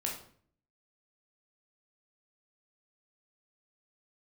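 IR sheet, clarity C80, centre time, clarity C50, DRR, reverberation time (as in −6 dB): 10.0 dB, 30 ms, 5.5 dB, −1.5 dB, 0.55 s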